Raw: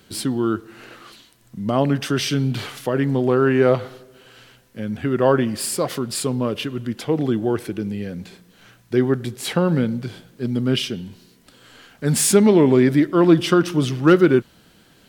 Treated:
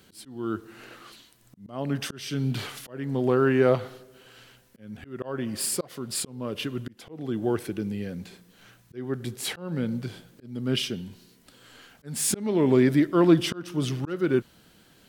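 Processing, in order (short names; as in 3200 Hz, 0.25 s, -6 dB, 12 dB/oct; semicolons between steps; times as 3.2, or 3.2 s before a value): high shelf 7900 Hz +3.5 dB; auto swell 0.392 s; gain -4.5 dB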